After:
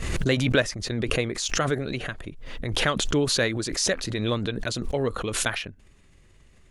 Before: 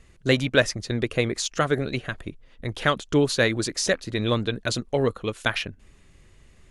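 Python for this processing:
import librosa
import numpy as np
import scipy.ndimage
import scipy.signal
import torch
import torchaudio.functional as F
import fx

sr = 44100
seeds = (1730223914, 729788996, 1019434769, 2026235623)

y = fx.pre_swell(x, sr, db_per_s=37.0)
y = y * librosa.db_to_amplitude(-3.5)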